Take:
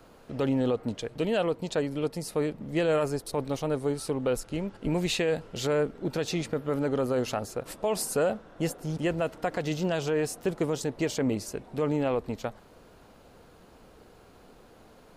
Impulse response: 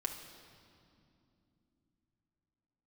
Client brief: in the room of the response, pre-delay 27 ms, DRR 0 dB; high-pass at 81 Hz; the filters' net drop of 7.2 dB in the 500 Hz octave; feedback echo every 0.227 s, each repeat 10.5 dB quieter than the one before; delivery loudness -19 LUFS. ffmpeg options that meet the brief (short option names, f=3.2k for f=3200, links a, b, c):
-filter_complex "[0:a]highpass=81,equalizer=f=500:t=o:g=-8.5,aecho=1:1:227|454|681:0.299|0.0896|0.0269,asplit=2[a][b];[1:a]atrim=start_sample=2205,adelay=27[c];[b][c]afir=irnorm=-1:irlink=0,volume=-1dB[d];[a][d]amix=inputs=2:normalize=0,volume=10.5dB"